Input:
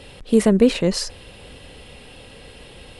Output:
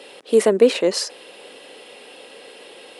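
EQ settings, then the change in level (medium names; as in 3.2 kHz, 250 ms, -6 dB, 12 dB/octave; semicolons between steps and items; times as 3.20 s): ladder high-pass 290 Hz, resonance 25%; +7.5 dB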